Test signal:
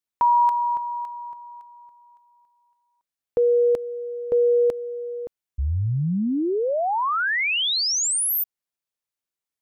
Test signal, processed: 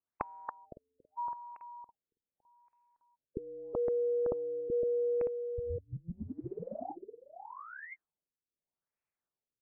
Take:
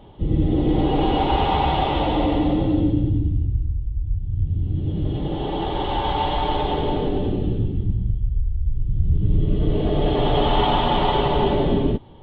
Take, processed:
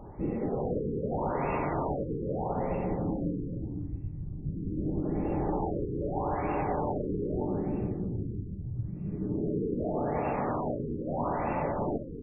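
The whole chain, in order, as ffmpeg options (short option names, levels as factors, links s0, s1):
-filter_complex "[0:a]afftfilt=real='re*lt(hypot(re,im),0.447)':imag='im*lt(hypot(re,im),0.447)':win_size=1024:overlap=0.75,acompressor=threshold=0.0398:ratio=10:attack=62:release=339:knee=1:detection=rms,asplit=2[s0][s1];[s1]aecho=0:1:512:0.473[s2];[s0][s2]amix=inputs=2:normalize=0,afftfilt=real='re*lt(b*sr/1024,500*pow(2800/500,0.5+0.5*sin(2*PI*0.8*pts/sr)))':imag='im*lt(b*sr/1024,500*pow(2800/500,0.5+0.5*sin(2*PI*0.8*pts/sr)))':win_size=1024:overlap=0.75"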